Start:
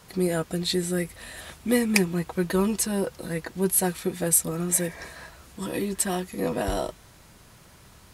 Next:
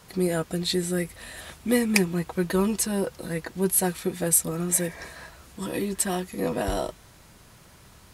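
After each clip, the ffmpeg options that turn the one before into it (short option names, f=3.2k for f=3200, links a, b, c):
-af anull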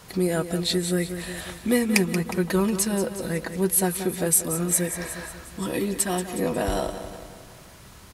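-filter_complex "[0:a]aecho=1:1:181|362|543|724|905:0.251|0.131|0.0679|0.0353|0.0184,asplit=2[a][b];[b]acompressor=threshold=-31dB:ratio=6,volume=-1.5dB[c];[a][c]amix=inputs=2:normalize=0,volume=-1dB"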